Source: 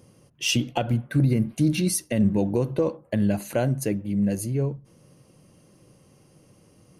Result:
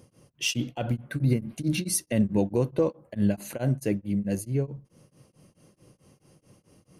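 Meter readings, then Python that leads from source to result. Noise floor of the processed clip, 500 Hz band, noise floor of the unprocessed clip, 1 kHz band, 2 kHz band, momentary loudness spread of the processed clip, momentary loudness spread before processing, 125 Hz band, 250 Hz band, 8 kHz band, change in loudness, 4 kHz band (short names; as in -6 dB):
-71 dBFS, -2.0 dB, -58 dBFS, -6.0 dB, -3.0 dB, 6 LU, 5 LU, -3.5 dB, -3.5 dB, -2.0 dB, -3.0 dB, -3.5 dB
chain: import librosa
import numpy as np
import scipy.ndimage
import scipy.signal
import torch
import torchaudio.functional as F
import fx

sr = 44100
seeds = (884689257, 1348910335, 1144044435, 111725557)

y = x * np.abs(np.cos(np.pi * 4.6 * np.arange(len(x)) / sr))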